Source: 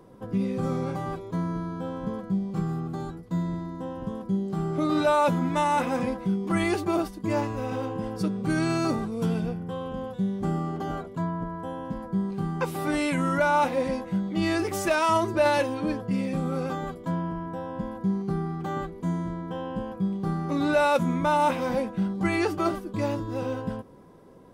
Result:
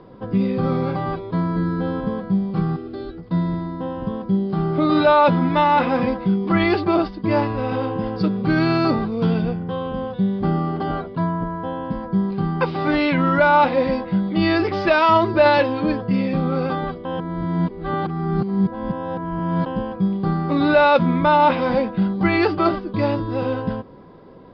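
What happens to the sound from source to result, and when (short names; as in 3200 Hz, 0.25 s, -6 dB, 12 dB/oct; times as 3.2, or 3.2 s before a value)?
1.33–1.77 echo throw 0.23 s, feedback 35%, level -4.5 dB
2.76–3.18 fixed phaser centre 390 Hz, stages 4
17.05–19.66 reverse
whole clip: Chebyshev low-pass 4900 Hz, order 6; gain +8 dB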